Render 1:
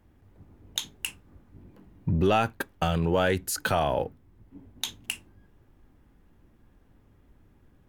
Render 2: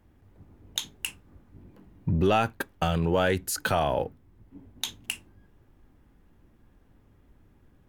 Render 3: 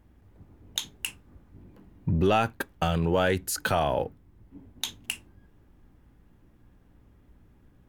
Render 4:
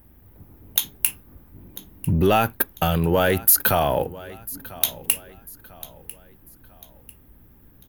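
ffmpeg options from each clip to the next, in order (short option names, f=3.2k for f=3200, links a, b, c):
-af anull
-af "aeval=exprs='val(0)+0.000891*(sin(2*PI*60*n/s)+sin(2*PI*2*60*n/s)/2+sin(2*PI*3*60*n/s)/3+sin(2*PI*4*60*n/s)/4+sin(2*PI*5*60*n/s)/5)':c=same"
-af "aecho=1:1:996|1992|2988:0.106|0.0413|0.0161,aexciter=amount=8.8:drive=7.5:freq=11k,asoftclip=type=tanh:threshold=-7.5dB,volume=5dB"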